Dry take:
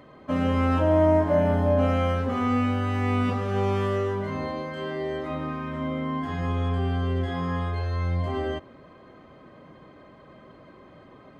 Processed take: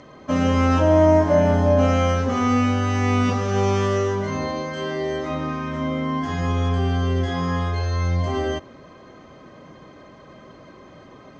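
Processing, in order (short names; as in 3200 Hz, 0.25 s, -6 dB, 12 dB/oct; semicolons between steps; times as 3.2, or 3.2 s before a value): synth low-pass 6100 Hz, resonance Q 5.5; gain +4.5 dB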